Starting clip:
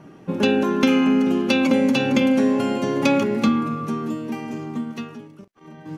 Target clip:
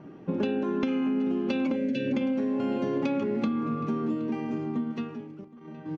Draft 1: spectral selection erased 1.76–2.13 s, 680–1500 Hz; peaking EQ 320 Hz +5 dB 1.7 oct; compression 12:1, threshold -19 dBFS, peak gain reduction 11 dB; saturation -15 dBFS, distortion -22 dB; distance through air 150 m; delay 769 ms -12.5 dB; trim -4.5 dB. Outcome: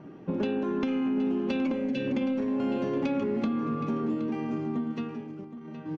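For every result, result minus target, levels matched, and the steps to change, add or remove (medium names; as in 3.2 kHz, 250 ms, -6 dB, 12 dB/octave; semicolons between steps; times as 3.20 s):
saturation: distortion +15 dB; echo-to-direct +8 dB
change: saturation -6.5 dBFS, distortion -37 dB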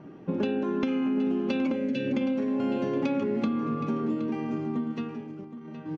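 echo-to-direct +8 dB
change: delay 769 ms -20.5 dB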